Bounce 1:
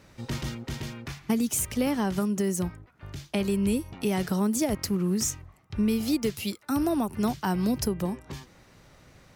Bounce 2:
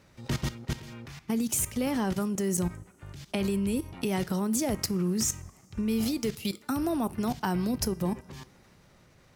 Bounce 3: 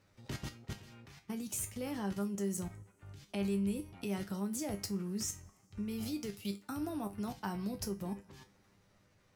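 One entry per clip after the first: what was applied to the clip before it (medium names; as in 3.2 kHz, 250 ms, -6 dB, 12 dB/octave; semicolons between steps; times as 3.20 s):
level held to a coarse grid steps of 16 dB; two-slope reverb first 0.36 s, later 3.8 s, from -21 dB, DRR 15.5 dB; trim +4.5 dB
feedback comb 100 Hz, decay 0.21 s, harmonics all, mix 80%; trim -3.5 dB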